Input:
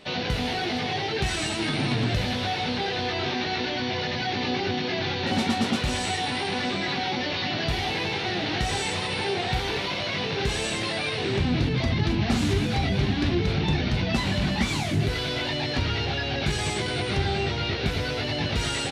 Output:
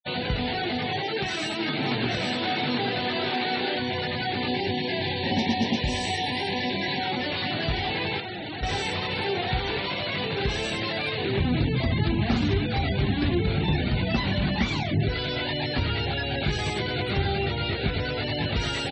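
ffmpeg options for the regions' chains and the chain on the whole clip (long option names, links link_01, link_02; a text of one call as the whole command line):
ffmpeg -i in.wav -filter_complex "[0:a]asettb=1/sr,asplit=3[link_01][link_02][link_03];[link_01]atrim=end=1.014[link_04];[link_02]atrim=start=1.01:end=3.79,asetpts=PTS-STARTPTS,afade=type=in:duration=0.004:curve=qsin,afade=type=out:start_time=2.776:duration=0.004:curve=qsin,highpass=170,aecho=1:1:828:0.631,atrim=end_sample=122598[link_05];[link_03]atrim=start=3.786[link_06];[link_04][link_05]acrossfade=duration=0.004:curve1=hsin:curve2=qsin[link_07];[link_07][link_06]acrossfade=duration=0.004:curve1=qsin:curve2=hsin,asettb=1/sr,asplit=3[link_08][link_09][link_10];[link_08]atrim=end=4.484[link_11];[link_09]atrim=start=4.48:end=7,asetpts=PTS-STARTPTS,afade=type=in:duration=0.004:curve=qsin,afade=type=out:start_time=2.516:duration=0.004:curve=qsin,asuperstop=centerf=1300:order=8:qfactor=2.5,highshelf=frequency=9300:gain=8.5[link_12];[link_10]atrim=start=6.996[link_13];[link_11][link_12]acrossfade=duration=0.004:curve1=hsin:curve2=qsin[link_14];[link_14][link_13]acrossfade=duration=0.004:curve1=qsin:curve2=hsin,asettb=1/sr,asplit=3[link_15][link_16][link_17];[link_15]atrim=end=8.204[link_18];[link_16]atrim=start=8.2:end=8.63,asetpts=PTS-STARTPTS,afade=type=in:duration=0.004:curve=qsin,afade=type=out:start_time=0.426:duration=0.004:curve=qsin,bandreject=frequency=59.48:width_type=h:width=4,bandreject=frequency=118.96:width_type=h:width=4,bandreject=frequency=178.44:width_type=h:width=4,bandreject=frequency=237.92:width_type=h:width=4,bandreject=frequency=297.4:width_type=h:width=4,bandreject=frequency=356.88:width_type=h:width=4,bandreject=frequency=416.36:width_type=h:width=4,bandreject=frequency=475.84:width_type=h:width=4,bandreject=frequency=535.32:width_type=h:width=4,asoftclip=type=hard:threshold=-31.5dB[link_19];[link_17]atrim=start=8.626[link_20];[link_18][link_19]acrossfade=duration=0.004:curve1=hsin:curve2=qsin[link_21];[link_21][link_20]acrossfade=duration=0.004:curve1=qsin:curve2=hsin,asettb=1/sr,asplit=3[link_22][link_23][link_24];[link_22]atrim=end=12.574[link_25];[link_23]atrim=start=12.57:end=13.02,asetpts=PTS-STARTPTS,afade=type=in:duration=0.004:curve=qsin,afade=type=out:start_time=0.446:duration=0.004:curve=qsin,lowpass=frequency=8300:width=0.5412,lowpass=frequency=8300:width=1.3066,equalizer=frequency=180:width_type=o:width=0.67:gain=-4.5,acrusher=bits=4:mode=log:mix=0:aa=0.000001[link_26];[link_24]atrim=start=13.016[link_27];[link_25][link_26]acrossfade=duration=0.004:curve1=hsin:curve2=qsin[link_28];[link_28][link_27]acrossfade=duration=0.004:curve1=qsin:curve2=hsin,afftfilt=real='re*gte(hypot(re,im),0.0251)':imag='im*gte(hypot(re,im),0.0251)':win_size=1024:overlap=0.75,lowpass=5800" out.wav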